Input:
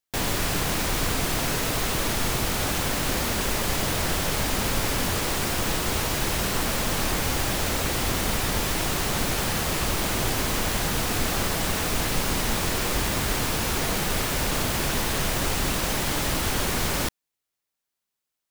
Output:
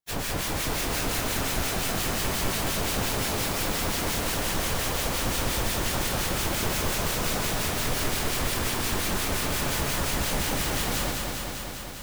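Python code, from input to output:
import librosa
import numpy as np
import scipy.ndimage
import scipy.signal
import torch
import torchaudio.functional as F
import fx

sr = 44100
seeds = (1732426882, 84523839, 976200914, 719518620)

y = fx.hum_notches(x, sr, base_hz=50, count=8)
y = fx.stretch_vocoder_free(y, sr, factor=0.65)
y = fx.harmonic_tremolo(y, sr, hz=5.7, depth_pct=70, crossover_hz=1500.0)
y = fx.echo_crushed(y, sr, ms=199, feedback_pct=80, bits=10, wet_db=-4)
y = y * 10.0 ** (2.0 / 20.0)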